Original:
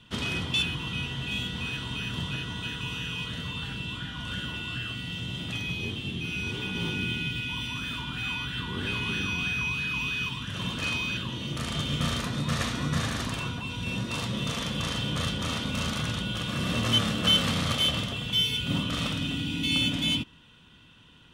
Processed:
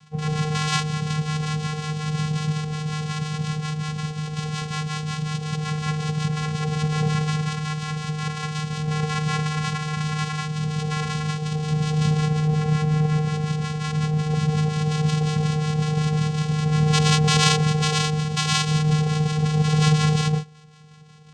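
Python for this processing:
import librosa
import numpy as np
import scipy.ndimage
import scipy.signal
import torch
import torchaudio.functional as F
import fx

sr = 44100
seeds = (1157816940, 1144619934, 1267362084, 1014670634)

y = fx.filter_lfo_lowpass(x, sr, shape='square', hz=5.5, low_hz=570.0, high_hz=2900.0, q=3.2)
y = fx.rev_gated(y, sr, seeds[0], gate_ms=210, shape='rising', drr_db=-4.0)
y = fx.vocoder(y, sr, bands=4, carrier='square', carrier_hz=153.0)
y = F.gain(torch.from_numpy(y), -1.0).numpy()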